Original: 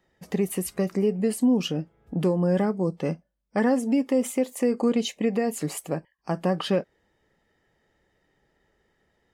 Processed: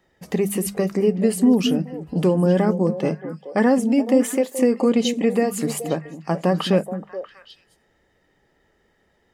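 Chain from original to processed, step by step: hum notches 50/100/150/200 Hz; repeats whose band climbs or falls 213 ms, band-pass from 220 Hz, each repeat 1.4 oct, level -6.5 dB; trim +5 dB

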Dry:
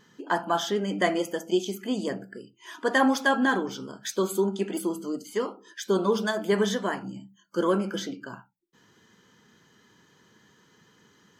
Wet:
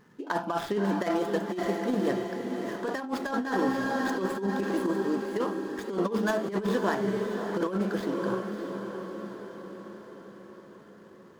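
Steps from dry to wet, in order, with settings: median filter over 15 samples; echo that smears into a reverb 601 ms, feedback 58%, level -8 dB; compressor with a negative ratio -26 dBFS, ratio -0.5

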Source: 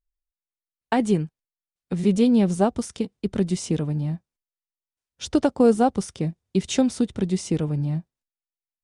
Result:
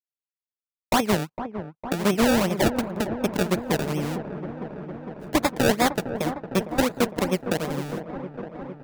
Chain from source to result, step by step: fade out at the end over 1.84 s; gate with hold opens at -45 dBFS; low-pass 2.1 kHz 24 dB/octave; peaking EQ 1 kHz +12.5 dB 0.22 oct; in parallel at +0.5 dB: compression, threshold -26 dBFS, peak gain reduction 13.5 dB; on the sum: Chebyshev shaper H 6 -7 dB, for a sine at -4.5 dBFS; high-pass 150 Hz 12 dB/octave; decimation with a swept rate 29×, swing 100% 2.7 Hz; on a send: feedback echo behind a low-pass 457 ms, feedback 75%, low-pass 1.3 kHz, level -10 dB; on the sum: trim -7 dB

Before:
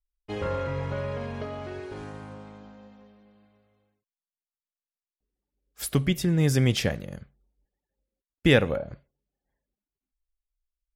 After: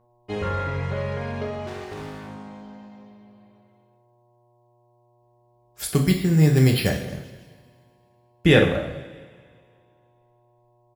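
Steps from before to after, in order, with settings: 1.67–2.28 s: self-modulated delay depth 0.52 ms; mains buzz 120 Hz, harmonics 9, -65 dBFS -2 dB/octave; on a send: feedback delay 159 ms, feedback 54%, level -21.5 dB; 5.87–6.90 s: on the sum: careless resampling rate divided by 6×, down filtered, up hold; two-slope reverb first 0.6 s, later 2.2 s, from -18 dB, DRR 1 dB; trim +1.5 dB

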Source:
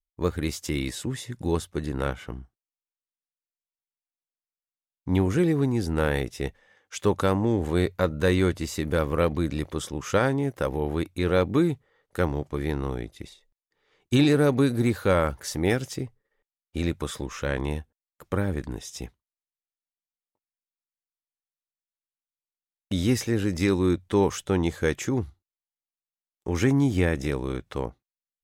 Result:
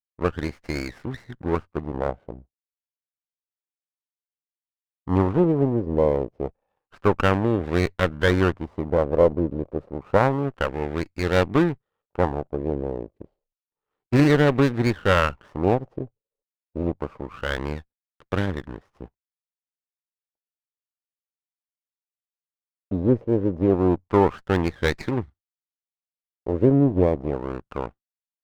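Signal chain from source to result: power-law waveshaper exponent 1.4; LFO low-pass sine 0.29 Hz 550–2200 Hz; sliding maximum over 9 samples; trim +4.5 dB

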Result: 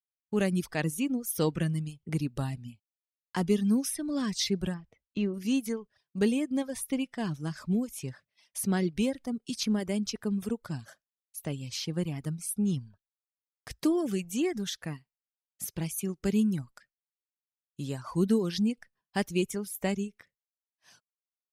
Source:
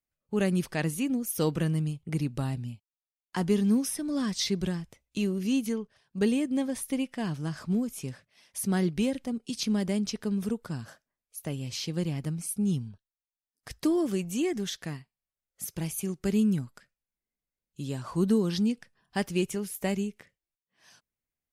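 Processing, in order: expander -56 dBFS; reverb removal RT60 0.85 s; 4.74–5.34 s: distance through air 240 m

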